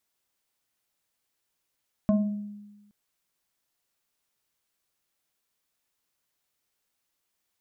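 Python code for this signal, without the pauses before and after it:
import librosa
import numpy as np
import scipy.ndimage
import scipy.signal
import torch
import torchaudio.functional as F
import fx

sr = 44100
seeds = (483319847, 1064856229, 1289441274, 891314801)

y = fx.fm2(sr, length_s=0.82, level_db=-17.0, carrier_hz=206.0, ratio=2.08, index=0.93, index_s=0.78, decay_s=1.2, shape='exponential')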